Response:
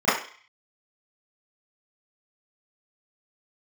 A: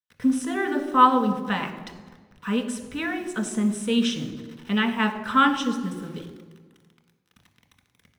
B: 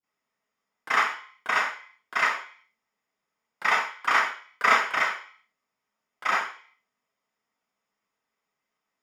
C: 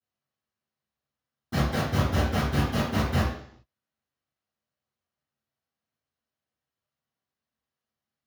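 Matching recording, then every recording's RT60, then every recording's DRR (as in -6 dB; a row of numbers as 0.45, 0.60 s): B; 1.4, 0.45, 0.60 s; 4.0, -16.5, -17.0 dB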